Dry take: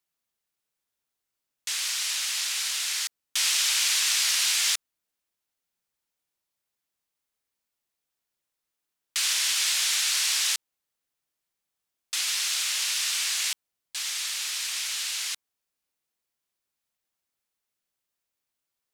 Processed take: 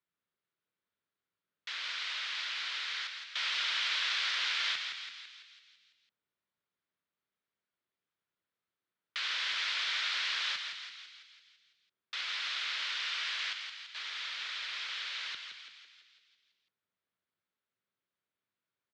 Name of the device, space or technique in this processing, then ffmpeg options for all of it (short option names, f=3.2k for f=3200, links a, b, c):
frequency-shifting delay pedal into a guitar cabinet: -filter_complex "[0:a]asplit=9[a][b][c][d][e][f][g][h][i];[b]adelay=167,afreqshift=83,volume=-6dB[j];[c]adelay=334,afreqshift=166,volume=-10.6dB[k];[d]adelay=501,afreqshift=249,volume=-15.2dB[l];[e]adelay=668,afreqshift=332,volume=-19.7dB[m];[f]adelay=835,afreqshift=415,volume=-24.3dB[n];[g]adelay=1002,afreqshift=498,volume=-28.9dB[o];[h]adelay=1169,afreqshift=581,volume=-33.5dB[p];[i]adelay=1336,afreqshift=664,volume=-38.1dB[q];[a][j][k][l][m][n][o][p][q]amix=inputs=9:normalize=0,highpass=86,equalizer=f=95:t=q:w=4:g=5,equalizer=f=180:t=q:w=4:g=5,equalizer=f=390:t=q:w=4:g=3,equalizer=f=780:t=q:w=4:g=-5,equalizer=f=1.4k:t=q:w=4:g=3,equalizer=f=2.7k:t=q:w=4:g=-4,lowpass=f=3.6k:w=0.5412,lowpass=f=3.6k:w=1.3066,volume=-3dB"